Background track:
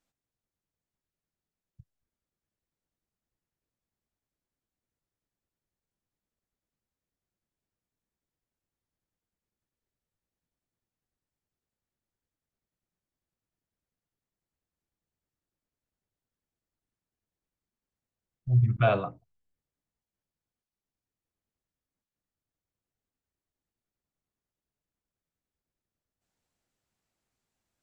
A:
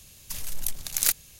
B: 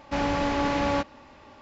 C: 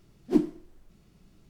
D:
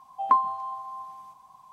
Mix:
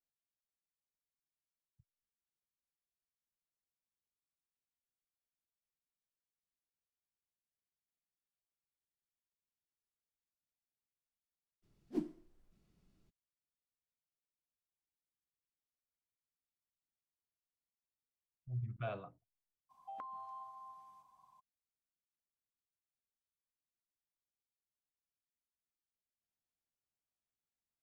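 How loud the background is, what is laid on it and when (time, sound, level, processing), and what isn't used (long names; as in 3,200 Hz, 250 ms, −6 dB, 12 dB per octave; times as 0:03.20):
background track −18 dB
0:11.62: mix in C −15 dB, fades 0.02 s
0:19.69: mix in D −14.5 dB, fades 0.02 s + downward compressor 16 to 1, threshold −29 dBFS
not used: A, B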